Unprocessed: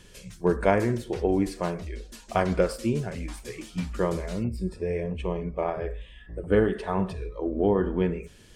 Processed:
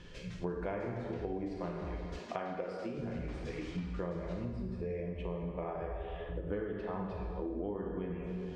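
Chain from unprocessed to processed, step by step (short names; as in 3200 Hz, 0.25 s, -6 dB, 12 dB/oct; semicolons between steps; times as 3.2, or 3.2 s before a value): air absorption 170 m; plate-style reverb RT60 1.6 s, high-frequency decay 0.85×, DRR 0.5 dB; compressor 6:1, threshold -36 dBFS, peak gain reduction 19 dB; 2.19–2.98 HPF 210 Hz 12 dB/oct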